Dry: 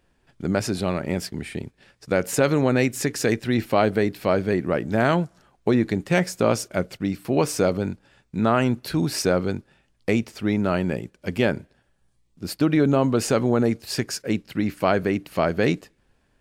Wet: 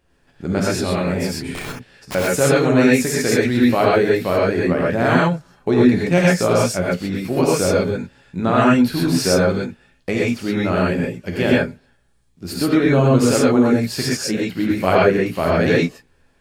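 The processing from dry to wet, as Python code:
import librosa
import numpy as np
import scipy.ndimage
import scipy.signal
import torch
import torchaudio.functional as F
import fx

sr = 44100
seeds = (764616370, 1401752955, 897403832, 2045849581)

y = fx.chorus_voices(x, sr, voices=6, hz=1.4, base_ms=14, depth_ms=3.0, mix_pct=25)
y = fx.overflow_wrap(y, sr, gain_db=26.0, at=(1.54, 2.15))
y = fx.rev_gated(y, sr, seeds[0], gate_ms=150, shape='rising', drr_db=-5.0)
y = F.gain(torch.from_numpy(y), 2.0).numpy()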